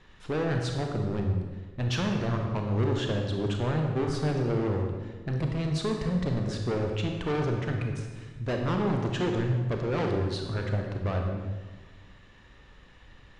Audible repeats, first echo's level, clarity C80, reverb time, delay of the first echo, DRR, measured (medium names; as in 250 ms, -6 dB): no echo, no echo, 5.0 dB, 1.4 s, no echo, 2.0 dB